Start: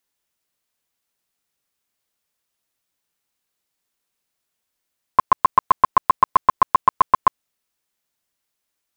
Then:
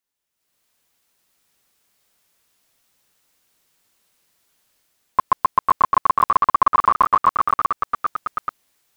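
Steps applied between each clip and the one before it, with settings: level rider gain up to 16 dB; ever faster or slower copies 790 ms, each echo +1 st, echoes 3; trim -6 dB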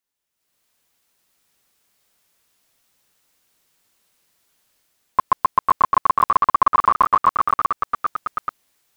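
no audible change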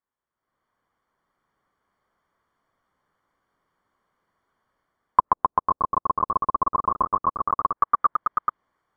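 Savitzky-Golay filter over 41 samples; low-pass that closes with the level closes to 540 Hz, closed at -15.5 dBFS; peaking EQ 1.1 kHz +7.5 dB 0.36 oct; trim -1 dB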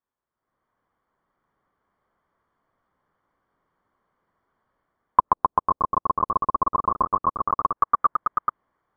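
low-pass 1.6 kHz 6 dB/octave; trim +2 dB

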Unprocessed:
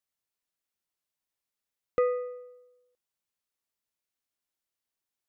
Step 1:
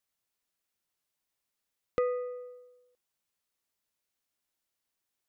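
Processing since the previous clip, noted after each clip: compression 1.5:1, threshold -42 dBFS, peak gain reduction 7.5 dB; trim +3.5 dB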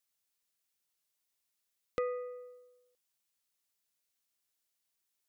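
treble shelf 2.4 kHz +8.5 dB; trim -5.5 dB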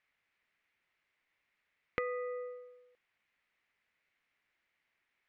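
compression 4:1, threshold -44 dBFS, peak gain reduction 12 dB; resonant low-pass 2.1 kHz, resonance Q 3.3; trim +7.5 dB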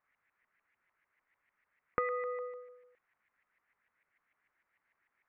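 LFO low-pass saw up 6.7 Hz 1–2.1 kHz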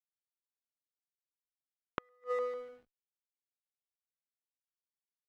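hysteresis with a dead band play -52.5 dBFS; valve stage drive 18 dB, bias 0.6; inverted gate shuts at -32 dBFS, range -39 dB; trim +9 dB

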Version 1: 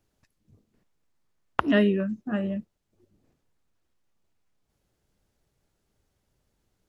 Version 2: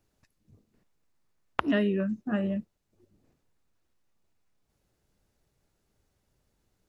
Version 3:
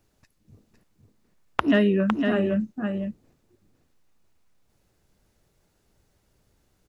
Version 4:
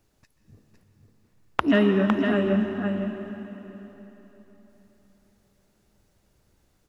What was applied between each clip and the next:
band-stop 3.2 kHz, Q 27; compression 5:1, threshold -22 dBFS, peak gain reduction 6 dB
in parallel at -6 dB: hard clipper -17.5 dBFS, distortion -16 dB; on the sum: delay 507 ms -5.5 dB; trim +2.5 dB
plate-style reverb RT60 3.8 s, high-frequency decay 0.85×, pre-delay 115 ms, DRR 6.5 dB

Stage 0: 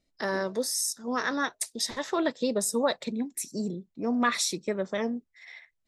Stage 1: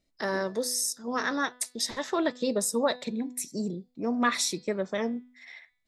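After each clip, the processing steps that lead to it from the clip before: de-hum 248.3 Hz, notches 21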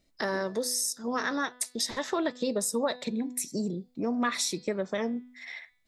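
compression 2:1, threshold -37 dBFS, peak gain reduction 10 dB; trim +5.5 dB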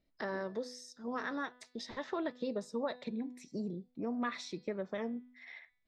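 distance through air 200 m; trim -7 dB

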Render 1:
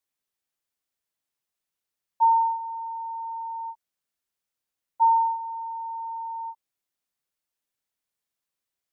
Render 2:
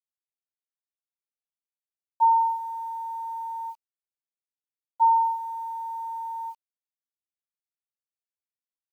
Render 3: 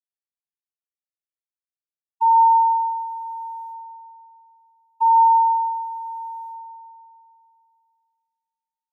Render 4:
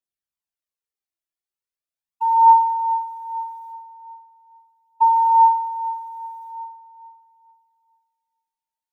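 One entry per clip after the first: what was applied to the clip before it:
bit crusher 10-bit
expander -26 dBFS; high-pass 780 Hz; FDN reverb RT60 2.5 s, high-frequency decay 0.45×, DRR 2.5 dB
phaser 0.4 Hz, delay 3.1 ms, feedback 52%

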